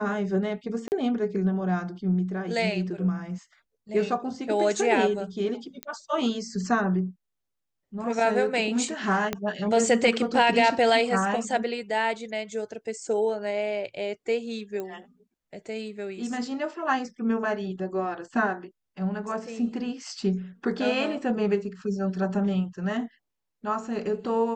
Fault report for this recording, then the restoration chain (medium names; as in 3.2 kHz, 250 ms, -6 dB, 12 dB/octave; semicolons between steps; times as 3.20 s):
0.88–0.92 s: dropout 39 ms
5.83 s: pop -17 dBFS
9.33 s: pop -12 dBFS
14.80 s: pop -21 dBFS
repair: de-click; interpolate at 0.88 s, 39 ms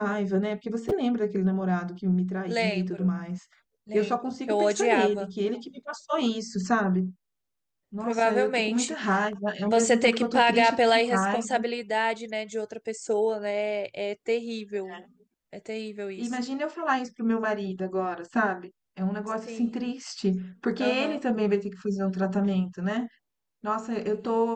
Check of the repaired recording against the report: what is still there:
9.33 s: pop